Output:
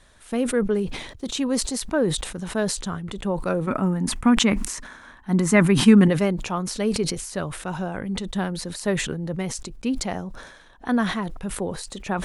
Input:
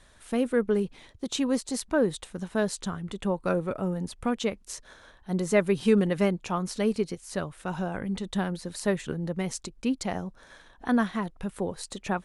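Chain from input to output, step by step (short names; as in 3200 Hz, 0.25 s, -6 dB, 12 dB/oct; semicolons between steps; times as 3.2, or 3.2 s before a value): 3.67–6.08 graphic EQ 250/500/1000/2000/4000/8000 Hz +11/-7/+7/+6/-3/+3 dB; sustainer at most 59 dB/s; gain +2 dB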